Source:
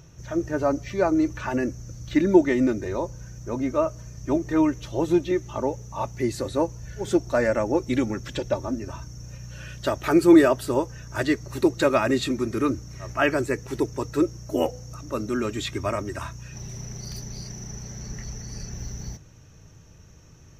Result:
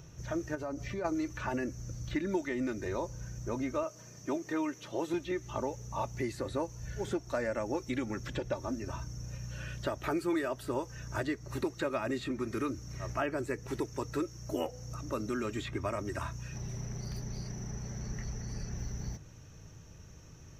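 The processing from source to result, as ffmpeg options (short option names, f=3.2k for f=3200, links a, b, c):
-filter_complex "[0:a]asplit=3[a][b][c];[a]afade=t=out:st=0.54:d=0.02[d];[b]acompressor=threshold=-31dB:ratio=5:attack=3.2:release=140:knee=1:detection=peak,afade=t=in:st=0.54:d=0.02,afade=t=out:st=1.04:d=0.02[e];[c]afade=t=in:st=1.04:d=0.02[f];[d][e][f]amix=inputs=3:normalize=0,asettb=1/sr,asplit=3[g][h][i];[g]atrim=end=3.834[j];[h]atrim=start=3.83:end=5.14,asetpts=PTS-STARTPTS,afade=t=in:d=0.004:c=qsin,afade=t=out:st=1.306:d=0.004:c=qsin,highpass=220[k];[i]atrim=start=5.136[l];[j][k]acrossfade=d=0.004:c1=hsin:c2=qsin[m];[m][l]acrossfade=d=0.004:c1=qsin:c2=hsin,acrossover=split=1100|2300[n][o][p];[n]acompressor=threshold=-31dB:ratio=4[q];[o]acompressor=threshold=-41dB:ratio=4[r];[p]acompressor=threshold=-49dB:ratio=4[s];[q][r][s]amix=inputs=3:normalize=0,volume=-2dB"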